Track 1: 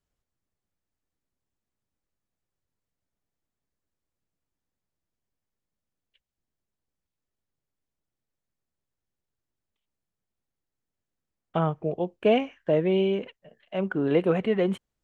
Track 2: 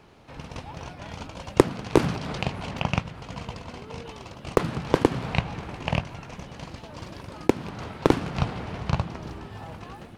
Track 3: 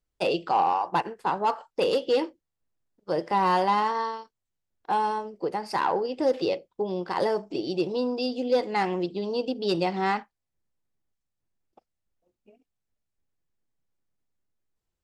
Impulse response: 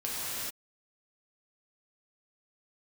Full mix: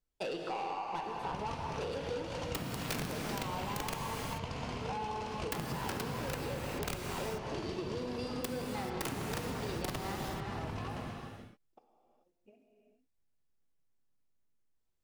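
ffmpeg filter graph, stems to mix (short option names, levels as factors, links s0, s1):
-filter_complex "[1:a]aeval=exprs='(mod(7.94*val(0)+1,2)-1)/7.94':c=same,adelay=950,volume=0.794,asplit=2[s0][s1];[s1]volume=0.473[s2];[2:a]asoftclip=type=tanh:threshold=0.0668,volume=0.422,asplit=2[s3][s4];[s4]volume=0.501[s5];[3:a]atrim=start_sample=2205[s6];[s2][s5]amix=inputs=2:normalize=0[s7];[s7][s6]afir=irnorm=-1:irlink=0[s8];[s0][s3][s8]amix=inputs=3:normalize=0,acompressor=threshold=0.0178:ratio=6"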